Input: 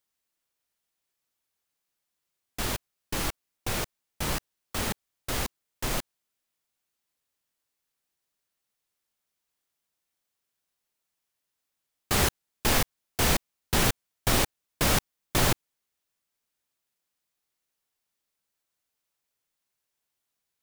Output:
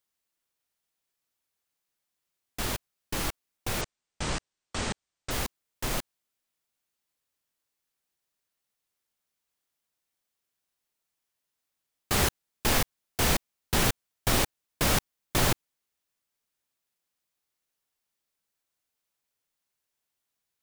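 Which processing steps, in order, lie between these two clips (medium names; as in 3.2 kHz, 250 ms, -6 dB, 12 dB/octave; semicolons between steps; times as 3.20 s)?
3.81–5.31 s: steep low-pass 8.9 kHz 72 dB/octave; trim -1 dB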